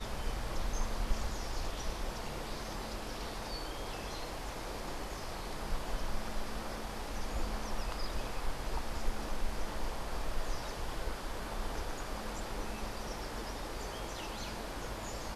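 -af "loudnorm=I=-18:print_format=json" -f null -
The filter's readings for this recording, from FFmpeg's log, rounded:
"input_i" : "-40.9",
"input_tp" : "-18.2",
"input_lra" : "0.9",
"input_thresh" : "-50.9",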